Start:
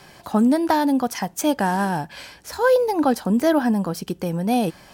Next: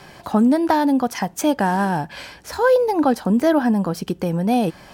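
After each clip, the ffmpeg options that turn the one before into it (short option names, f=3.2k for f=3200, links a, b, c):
-filter_complex "[0:a]highshelf=f=4.2k:g=-6,asplit=2[a][b];[b]acompressor=threshold=-26dB:ratio=6,volume=-3dB[c];[a][c]amix=inputs=2:normalize=0"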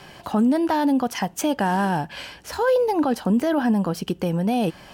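-af "equalizer=f=2.9k:t=o:w=0.22:g=7.5,alimiter=limit=-11.5dB:level=0:latency=1:release=12,volume=-1.5dB"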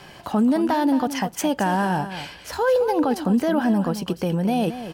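-af "aecho=1:1:219:0.266"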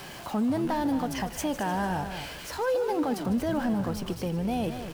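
-filter_complex "[0:a]aeval=exprs='val(0)+0.5*0.0299*sgn(val(0))':c=same,asplit=7[a][b][c][d][e][f][g];[b]adelay=152,afreqshift=-110,volume=-13dB[h];[c]adelay=304,afreqshift=-220,volume=-18.2dB[i];[d]adelay=456,afreqshift=-330,volume=-23.4dB[j];[e]adelay=608,afreqshift=-440,volume=-28.6dB[k];[f]adelay=760,afreqshift=-550,volume=-33.8dB[l];[g]adelay=912,afreqshift=-660,volume=-39dB[m];[a][h][i][j][k][l][m]amix=inputs=7:normalize=0,volume=-8.5dB"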